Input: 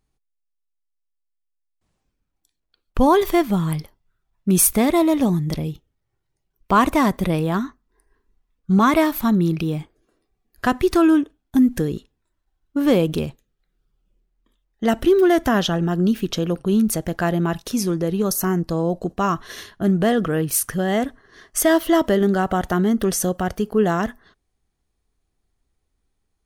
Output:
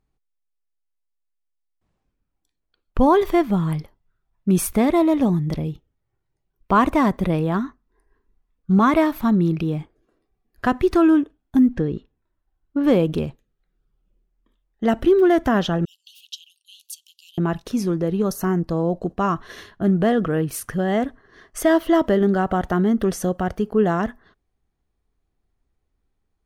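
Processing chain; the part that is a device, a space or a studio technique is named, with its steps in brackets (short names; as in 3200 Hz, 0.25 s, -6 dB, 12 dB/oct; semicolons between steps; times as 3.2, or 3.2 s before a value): 11.68–12.84 air absorption 150 m; 15.85–17.38 steep high-pass 2800 Hz 96 dB/oct; through cloth (high shelf 3800 Hz -12 dB)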